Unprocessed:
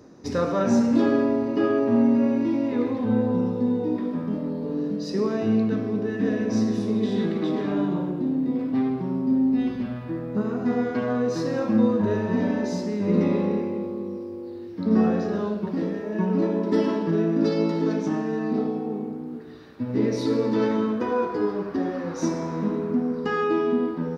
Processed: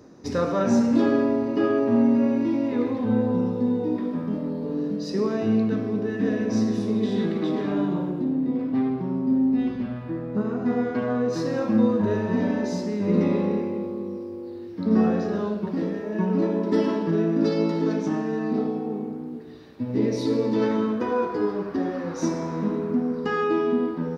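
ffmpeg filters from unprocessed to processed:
-filter_complex "[0:a]asettb=1/sr,asplit=3[a][b][c];[a]atrim=end=8.244[d];[b]atrim=start=8.24:end=11.33,asetpts=PTS-STARTPTS,afade=t=in:d=0.004:c=qsin,afade=t=out:st=3.086:d=0.004:c=qsin,highshelf=f=4k:g=-6.5[e];[c]atrim=start=11.326[f];[d][e]acrossfade=d=0.004:c1=hsin:c2=qsin[g];[g][f]acrossfade=d=0.004:c1=qsin:c2=hsin,asettb=1/sr,asplit=3[h][i][j];[h]atrim=end=19.294[k];[i]atrim=start=19.29:end=20.62,asetpts=PTS-STARTPTS,afade=t=in:d=0.004:c=qsin,afade=t=out:st=1.326:d=0.004:c=qsin,equalizer=f=1.4k:w=2:g=-6[l];[j]atrim=start=20.616[m];[k][l]acrossfade=d=0.004:c1=hsin:c2=qsin[n];[n][m]acrossfade=d=0.004:c1=qsin:c2=hsin"

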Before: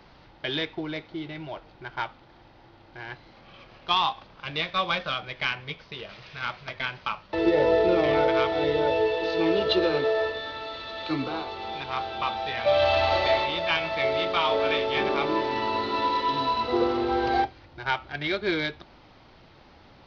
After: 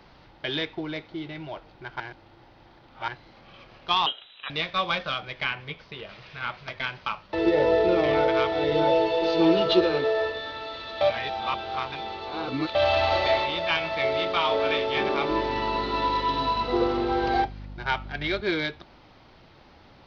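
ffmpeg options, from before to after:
-filter_complex "[0:a]asettb=1/sr,asplit=3[a][b][c];[a]atrim=end=4.064[d];[b]atrim=start=4.06:end=4.5,asetpts=PTS-STARTPTS,afade=t=in:d=0.004:c=qsin,afade=t=out:st=0.436:d=0.004:c=qsin,lowpass=f=3.4k:t=q:w=0.5098,lowpass=f=3.4k:t=q:w=0.6013,lowpass=f=3.4k:t=q:w=0.9,lowpass=f=3.4k:t=q:w=2.563,afreqshift=-4000[e];[c]atrim=start=4.496[f];[d][e]acrossfade=d=0.004:c1=hsin:c2=qsin[g];[g][f]acrossfade=d=0.004:c1=qsin:c2=hsin,asettb=1/sr,asplit=3[h][i][j];[h]atrim=end=5.444[k];[i]atrim=start=5.44:end=6.57,asetpts=PTS-STARTPTS,afade=t=in:d=0.004:c=qsin,afade=t=out:st=1.126:d=0.004:c=qsin,acrossover=split=4000[l][m];[m]acompressor=threshold=-58dB:ratio=4:attack=1:release=60[n];[l][n]amix=inputs=2:normalize=0[o];[j]atrim=start=6.566[p];[k][o]acrossfade=d=0.004:c1=hsin:c2=qsin[q];[q][p]acrossfade=d=0.004:c1=qsin:c2=hsin,asettb=1/sr,asplit=3[r][s][t];[r]atrim=end=8.714[u];[s]atrim=start=8.71:end=9.81,asetpts=PTS-STARTPTS,afade=t=in:d=0.004:c=qsin,afade=t=out:st=1.096:d=0.004:c=qsin,aecho=1:1:5.9:0.95,atrim=end_sample=48510[v];[t]atrim=start=9.806[w];[u][v]acrossfade=d=0.004:c1=hsin:c2=qsin[x];[x][w]acrossfade=d=0.004:c1=qsin:c2=hsin,asettb=1/sr,asplit=3[y][z][aa];[y]atrim=end=15.304[ab];[z]atrim=start=15.3:end=18.41,asetpts=PTS-STARTPTS,afade=t=in:d=0.004:c=qsin,afade=t=out:st=3.106:d=0.004:c=qsin,aeval=exprs='val(0)+0.0126*(sin(2*PI*50*n/s)+sin(2*PI*2*50*n/s)/2+sin(2*PI*3*50*n/s)/3+sin(2*PI*4*50*n/s)/4+sin(2*PI*5*50*n/s)/5)':c=same[ac];[aa]atrim=start=18.406[ad];[ab][ac]acrossfade=d=0.004:c1=hsin:c2=qsin[ae];[ae][ad]acrossfade=d=0.004:c1=qsin:c2=hsin,asplit=5[af][ag][ah][ai][aj];[af]atrim=end=2.002[ak];[ag]atrim=start=1.998:end=3.082,asetpts=PTS-STARTPTS,areverse[al];[ah]atrim=start=3.078:end=11.012[am];[ai]atrim=start=11.008:end=12.752,asetpts=PTS-STARTPTS,areverse[an];[aj]atrim=start=12.748[ao];[ak][al]acrossfade=d=0.004:c1=hsin:c2=hsin[ap];[ap][am]acrossfade=d=0.004:c1=hsin:c2=hsin[aq];[aq][an]acrossfade=d=0.004:c1=hsin:c2=hsin[ar];[ar][ao]acrossfade=d=0.004:c1=hsin:c2=hsin"

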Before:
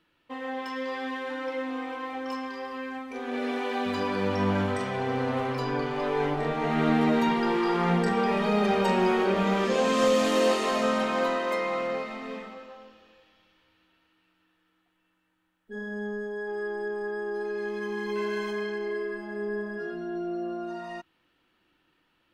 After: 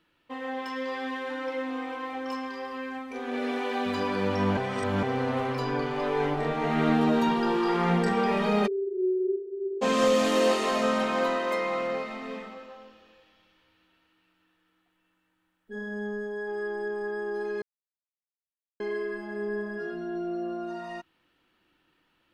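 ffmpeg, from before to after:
-filter_complex "[0:a]asettb=1/sr,asplit=3[a][b][c];[a]atrim=end=6.954[d];[b]atrim=start=6.95:end=7.68,asetpts=PTS-STARTPTS,afade=t=in:d=0.004:c=qsin,afade=t=out:st=0.726:d=0.004:c=qsin,equalizer=f=2.1k:w=7.2:g=-12[e];[c]atrim=start=7.676[f];[d][e]acrossfade=d=0.004:c1=hsin:c2=qsin[g];[g][f]acrossfade=d=0.004:c1=qsin:c2=hsin,asplit=3[h][i][j];[h]afade=t=out:st=8.66:d=0.02[k];[i]asuperpass=centerf=380:order=12:qfactor=4.5,afade=t=in:st=8.66:d=0.02,afade=t=out:st=9.81:d=0.02[l];[j]afade=t=in:st=9.81:d=0.02[m];[k][l][m]amix=inputs=3:normalize=0,asplit=5[n][o][p][q][r];[n]atrim=end=4.572[s];[o]atrim=start=4.568:end=5.032,asetpts=PTS-STARTPTS,areverse[t];[p]atrim=start=5.028:end=17.62,asetpts=PTS-STARTPTS,afade=t=out:st=12.588:d=0.004:c=hsin[u];[q]atrim=start=17.62:end=18.8,asetpts=PTS-STARTPTS,volume=0[v];[r]atrim=start=18.8,asetpts=PTS-STARTPTS,afade=t=in:d=0.004:c=hsin[w];[s][t]acrossfade=d=0.004:c1=hsin:c2=hsin[x];[u][v][w]concat=n=3:v=0:a=1[y];[x][y]acrossfade=d=0.004:c1=hsin:c2=hsin"

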